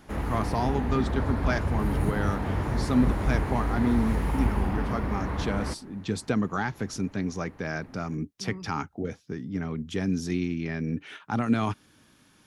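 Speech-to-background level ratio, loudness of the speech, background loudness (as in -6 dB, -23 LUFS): -1.0 dB, -30.5 LUFS, -29.5 LUFS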